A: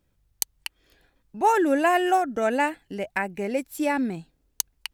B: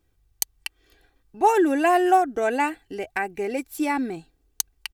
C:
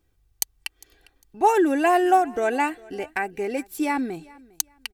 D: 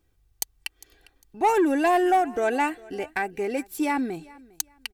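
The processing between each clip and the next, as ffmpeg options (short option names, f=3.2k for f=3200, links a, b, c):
-af "aecho=1:1:2.6:0.56"
-af "aecho=1:1:403|806:0.0668|0.018"
-af "asoftclip=type=tanh:threshold=-13.5dB"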